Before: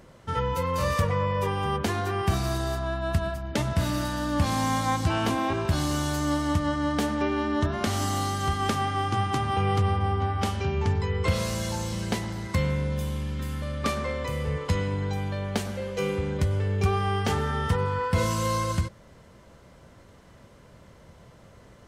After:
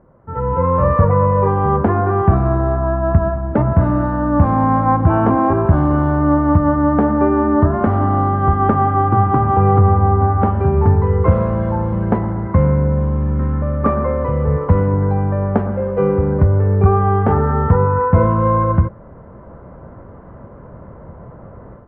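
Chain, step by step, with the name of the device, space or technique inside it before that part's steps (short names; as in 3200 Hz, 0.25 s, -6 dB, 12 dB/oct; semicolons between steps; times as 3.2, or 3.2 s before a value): 4.65–5.24 bell 5200 Hz -12 dB 0.32 oct; action camera in a waterproof case (LPF 1300 Hz 24 dB/oct; AGC gain up to 15 dB; AAC 96 kbps 24000 Hz)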